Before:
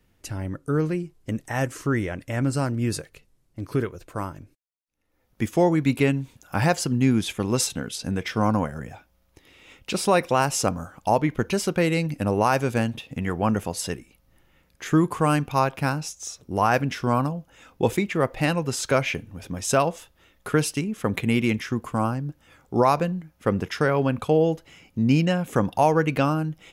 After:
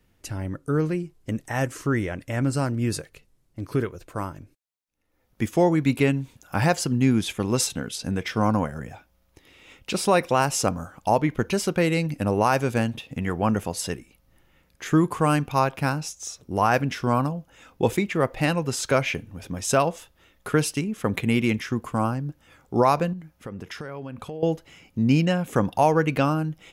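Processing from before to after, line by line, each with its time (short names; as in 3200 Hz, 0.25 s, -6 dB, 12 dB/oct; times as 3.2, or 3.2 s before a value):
23.13–24.43 compressor 5:1, threshold -33 dBFS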